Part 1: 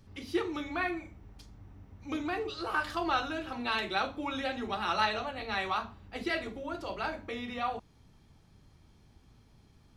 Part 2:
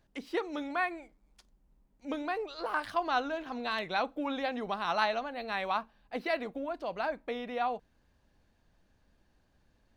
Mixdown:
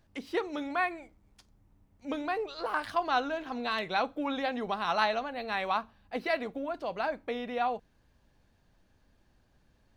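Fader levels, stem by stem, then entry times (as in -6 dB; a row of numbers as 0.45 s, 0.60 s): -15.5 dB, +1.5 dB; 0.00 s, 0.00 s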